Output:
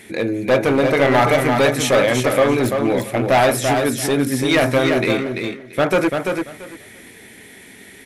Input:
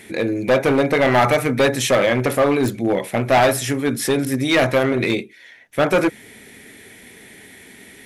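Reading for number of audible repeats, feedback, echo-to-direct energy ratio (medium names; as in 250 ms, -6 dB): 3, 18%, -5.0 dB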